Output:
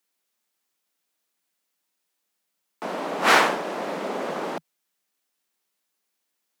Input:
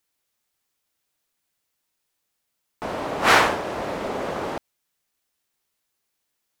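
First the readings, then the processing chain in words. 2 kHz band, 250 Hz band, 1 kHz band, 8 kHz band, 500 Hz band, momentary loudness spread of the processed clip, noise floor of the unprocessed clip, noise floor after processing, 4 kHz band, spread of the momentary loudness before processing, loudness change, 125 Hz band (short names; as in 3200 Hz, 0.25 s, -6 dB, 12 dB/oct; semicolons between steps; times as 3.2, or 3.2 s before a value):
-1.0 dB, -1.0 dB, -1.0 dB, -1.0 dB, -1.0 dB, 16 LU, -78 dBFS, -79 dBFS, -1.0 dB, 16 LU, -1.0 dB, -6.5 dB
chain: steep high-pass 160 Hz 72 dB/oct; gain -1 dB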